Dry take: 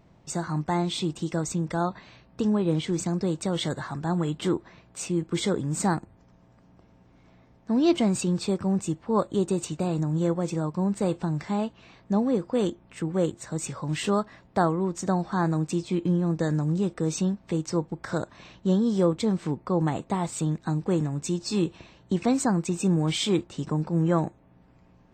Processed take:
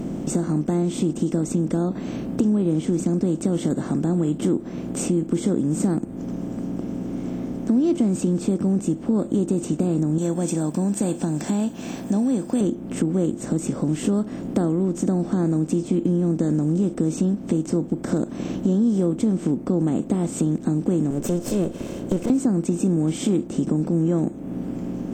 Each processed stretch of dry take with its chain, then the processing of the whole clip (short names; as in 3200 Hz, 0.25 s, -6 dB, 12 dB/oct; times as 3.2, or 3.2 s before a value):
10.18–12.61 RIAA curve recording + comb 1.2 ms, depth 48%
21.1–22.3 minimum comb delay 1.9 ms + bell 560 Hz +6 dB 0.21 oct
whole clip: per-bin compression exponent 0.6; graphic EQ 250/1000/2000/4000 Hz +11/-10/-5/-11 dB; compressor 2.5:1, threshold -30 dBFS; gain +6.5 dB